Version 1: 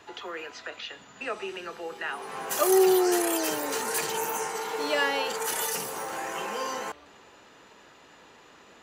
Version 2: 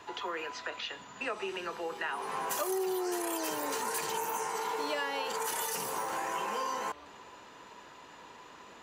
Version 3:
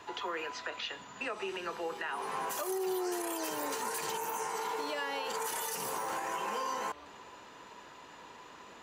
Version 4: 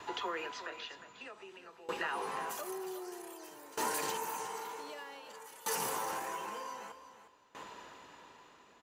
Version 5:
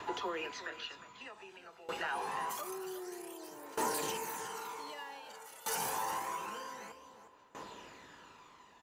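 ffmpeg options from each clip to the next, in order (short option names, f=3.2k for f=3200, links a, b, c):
-af "equalizer=f=990:w=7.5:g=9.5,acompressor=threshold=-31dB:ratio=6"
-af "alimiter=level_in=2dB:limit=-24dB:level=0:latency=1:release=116,volume=-2dB"
-af "aecho=1:1:358|716|1074:0.398|0.115|0.0335,aeval=exprs='val(0)*pow(10,-21*if(lt(mod(0.53*n/s,1),2*abs(0.53)/1000),1-mod(0.53*n/s,1)/(2*abs(0.53)/1000),(mod(0.53*n/s,1)-2*abs(0.53)/1000)/(1-2*abs(0.53)/1000))/20)':c=same,volume=2.5dB"
-filter_complex "[0:a]asplit=2[a][b];[b]asoftclip=type=tanh:threshold=-32.5dB,volume=-3.5dB[c];[a][c]amix=inputs=2:normalize=0,aphaser=in_gain=1:out_gain=1:delay=1.5:decay=0.39:speed=0.27:type=triangular,volume=-4.5dB"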